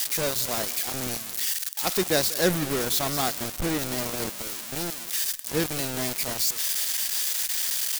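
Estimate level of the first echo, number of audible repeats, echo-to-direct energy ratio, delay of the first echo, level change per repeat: -20.0 dB, 2, -19.0 dB, 0.193 s, -5.5 dB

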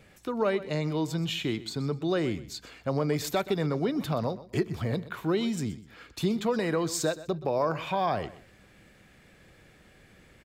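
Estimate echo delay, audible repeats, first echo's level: 0.125 s, 2, -16.5 dB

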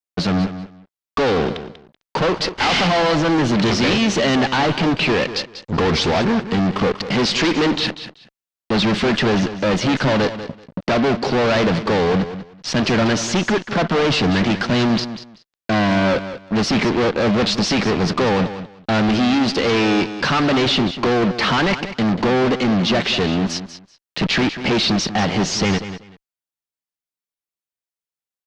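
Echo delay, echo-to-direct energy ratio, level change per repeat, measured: 0.191 s, -12.0 dB, -14.5 dB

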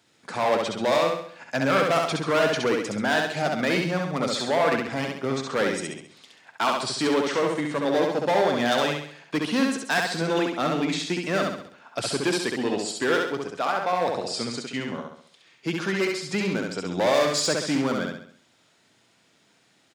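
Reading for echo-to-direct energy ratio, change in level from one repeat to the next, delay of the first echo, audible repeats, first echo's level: -2.0 dB, -7.0 dB, 67 ms, 5, -3.0 dB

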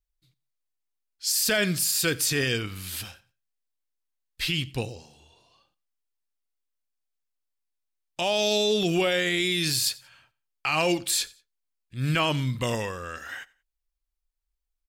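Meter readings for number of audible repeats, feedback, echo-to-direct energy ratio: 2, 30%, -22.5 dB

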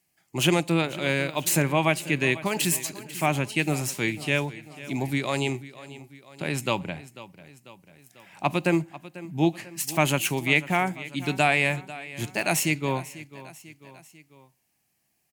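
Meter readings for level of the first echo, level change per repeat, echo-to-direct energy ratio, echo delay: -17.0 dB, -5.0 dB, -15.5 dB, 0.494 s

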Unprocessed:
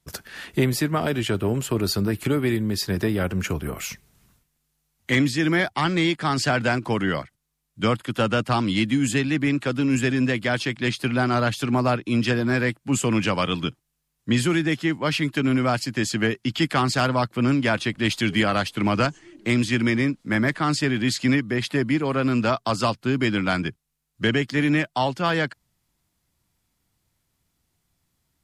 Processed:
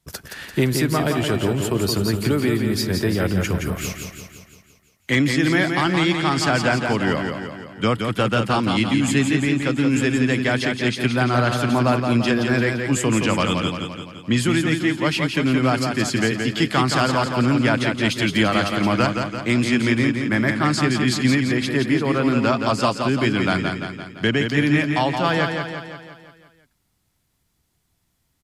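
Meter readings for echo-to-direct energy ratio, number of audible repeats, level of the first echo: -4.0 dB, 6, -5.5 dB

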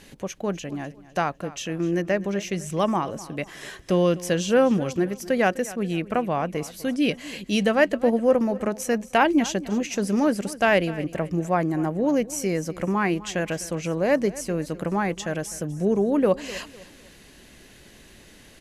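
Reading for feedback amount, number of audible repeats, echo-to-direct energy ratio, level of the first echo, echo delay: 35%, 2, -17.5 dB, -18.0 dB, 0.252 s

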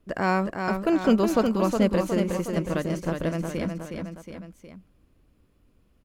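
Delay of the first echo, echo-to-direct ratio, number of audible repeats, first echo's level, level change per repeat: 0.364 s, -4.0 dB, 3, -5.5 dB, -5.0 dB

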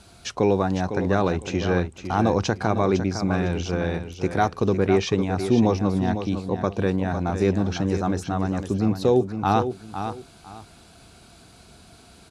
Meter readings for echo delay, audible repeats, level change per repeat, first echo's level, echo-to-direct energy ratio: 0.505 s, 2, -12.5 dB, -9.0 dB, -9.0 dB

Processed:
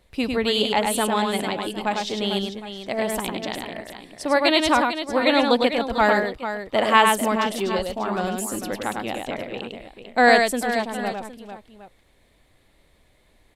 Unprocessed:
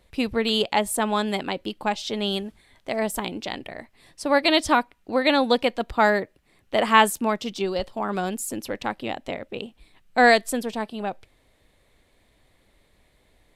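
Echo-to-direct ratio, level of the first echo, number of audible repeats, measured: -3.0 dB, -4.0 dB, 3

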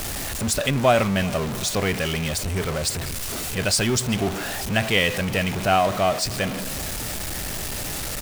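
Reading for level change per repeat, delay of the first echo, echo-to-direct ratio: -6.5 dB, 0.381 s, -20.5 dB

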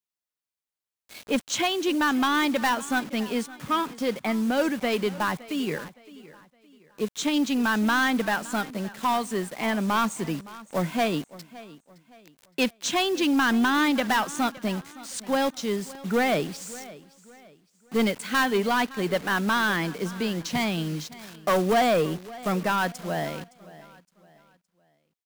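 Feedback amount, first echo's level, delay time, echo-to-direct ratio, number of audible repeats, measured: 35%, -19.0 dB, 0.565 s, -18.5 dB, 2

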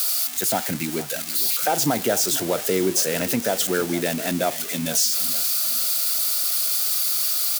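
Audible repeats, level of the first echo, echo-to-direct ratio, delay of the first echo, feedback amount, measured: 3, -16.0 dB, -15.5 dB, 0.462 s, 39%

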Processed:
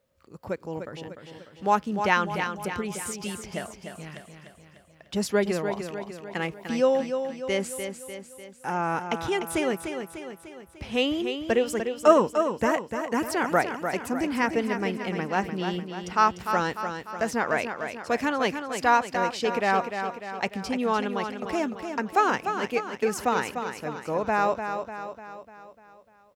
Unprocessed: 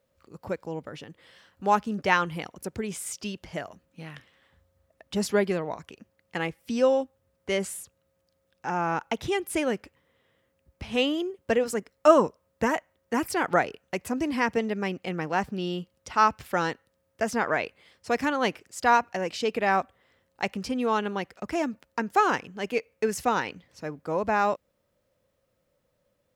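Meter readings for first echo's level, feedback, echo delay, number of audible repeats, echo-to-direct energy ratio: -7.5 dB, 53%, 0.298 s, 5, -6.0 dB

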